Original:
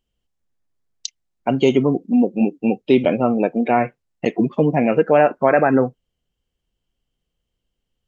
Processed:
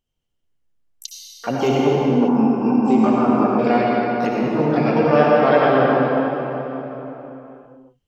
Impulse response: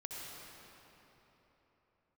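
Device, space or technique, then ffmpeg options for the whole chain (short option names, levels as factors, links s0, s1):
shimmer-style reverb: -filter_complex "[0:a]asplit=2[s0][s1];[s1]asetrate=88200,aresample=44100,atempo=0.5,volume=0.316[s2];[s0][s2]amix=inputs=2:normalize=0[s3];[1:a]atrim=start_sample=2205[s4];[s3][s4]afir=irnorm=-1:irlink=0,asettb=1/sr,asplit=3[s5][s6][s7];[s5]atrim=end=2.284[s8];[s6]atrim=start=2.28:end=3.59,asetpts=PTS-STARTPTS,afade=t=in:d=0.004:c=qsin,afade=t=out:st=1.306:d=0.004:c=qsin,equalizer=f=125:t=o:w=1:g=-4,equalizer=f=250:t=o:w=1:g=6,equalizer=f=500:t=o:w=1:g=-8,equalizer=f=1000:t=o:w=1:g=9,equalizer=f=2000:t=o:w=1:g=-5,equalizer=f=4000:t=o:w=1:g=-11[s9];[s7]atrim=start=3.586[s10];[s8][s9]acrossfade=d=0.004:c1=hsin:c2=qsin[s11];[s11][s10]acrossfade=d=0.004:c1=qsin:c2=hsin,volume=1.12"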